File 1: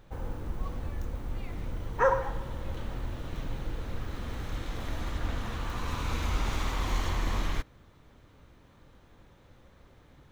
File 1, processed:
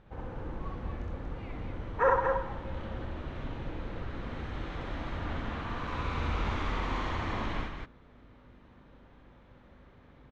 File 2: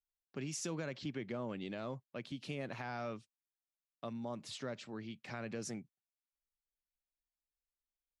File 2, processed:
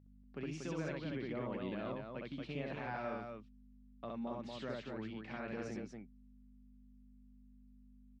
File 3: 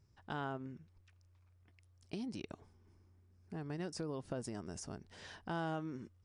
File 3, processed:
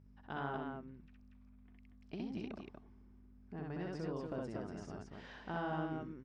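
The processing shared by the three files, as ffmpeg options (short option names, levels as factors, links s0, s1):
-filter_complex "[0:a]lowpass=2900,aeval=exprs='val(0)+0.00158*(sin(2*PI*50*n/s)+sin(2*PI*2*50*n/s)/2+sin(2*PI*3*50*n/s)/3+sin(2*PI*4*50*n/s)/4+sin(2*PI*5*50*n/s)/5)':c=same,lowshelf=f=65:g=-8.5,asplit=2[s0][s1];[s1]aecho=0:1:64.14|236.2:0.891|0.631[s2];[s0][s2]amix=inputs=2:normalize=0,volume=0.794"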